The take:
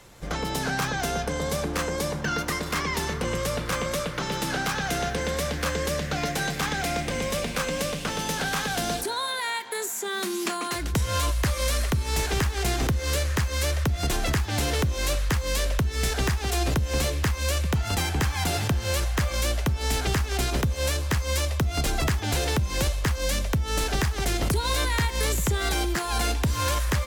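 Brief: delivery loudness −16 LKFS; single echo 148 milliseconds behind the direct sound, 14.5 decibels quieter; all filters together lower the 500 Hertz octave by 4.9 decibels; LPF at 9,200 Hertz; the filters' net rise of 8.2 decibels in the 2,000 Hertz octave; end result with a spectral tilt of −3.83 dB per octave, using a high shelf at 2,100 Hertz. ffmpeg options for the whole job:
ffmpeg -i in.wav -af "lowpass=9200,equalizer=frequency=500:width_type=o:gain=-7,equalizer=frequency=2000:width_type=o:gain=7,highshelf=frequency=2100:gain=6.5,aecho=1:1:148:0.188,volume=6.5dB" out.wav

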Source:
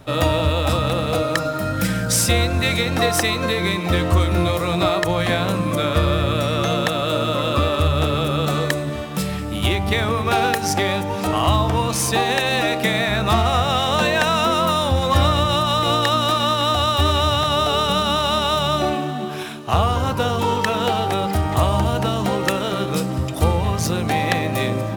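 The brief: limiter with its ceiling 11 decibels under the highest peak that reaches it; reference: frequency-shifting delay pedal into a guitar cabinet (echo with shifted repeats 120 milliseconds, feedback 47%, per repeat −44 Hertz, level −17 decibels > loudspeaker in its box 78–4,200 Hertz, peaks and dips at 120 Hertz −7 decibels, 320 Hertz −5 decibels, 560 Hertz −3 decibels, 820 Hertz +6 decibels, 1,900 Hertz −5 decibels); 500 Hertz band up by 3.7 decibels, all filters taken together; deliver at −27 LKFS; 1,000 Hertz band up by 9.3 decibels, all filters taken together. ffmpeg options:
ffmpeg -i in.wav -filter_complex "[0:a]equalizer=frequency=500:width_type=o:gain=3.5,equalizer=frequency=1000:width_type=o:gain=8,alimiter=limit=-10dB:level=0:latency=1,asplit=5[link_01][link_02][link_03][link_04][link_05];[link_02]adelay=120,afreqshift=-44,volume=-17dB[link_06];[link_03]adelay=240,afreqshift=-88,volume=-23.6dB[link_07];[link_04]adelay=360,afreqshift=-132,volume=-30.1dB[link_08];[link_05]adelay=480,afreqshift=-176,volume=-36.7dB[link_09];[link_01][link_06][link_07][link_08][link_09]amix=inputs=5:normalize=0,highpass=78,equalizer=frequency=120:width_type=q:width=4:gain=-7,equalizer=frequency=320:width_type=q:width=4:gain=-5,equalizer=frequency=560:width_type=q:width=4:gain=-3,equalizer=frequency=820:width_type=q:width=4:gain=6,equalizer=frequency=1900:width_type=q:width=4:gain=-5,lowpass=frequency=4200:width=0.5412,lowpass=frequency=4200:width=1.3066,volume=-8dB" out.wav

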